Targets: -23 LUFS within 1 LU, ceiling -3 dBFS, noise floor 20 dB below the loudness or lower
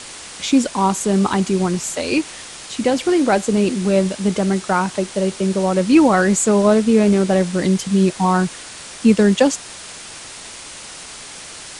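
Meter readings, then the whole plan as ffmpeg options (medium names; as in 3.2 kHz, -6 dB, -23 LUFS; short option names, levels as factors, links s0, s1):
noise floor -36 dBFS; noise floor target -37 dBFS; loudness -17.0 LUFS; peak level -2.0 dBFS; loudness target -23.0 LUFS
-> -af "afftdn=nr=6:nf=-36"
-af "volume=0.501"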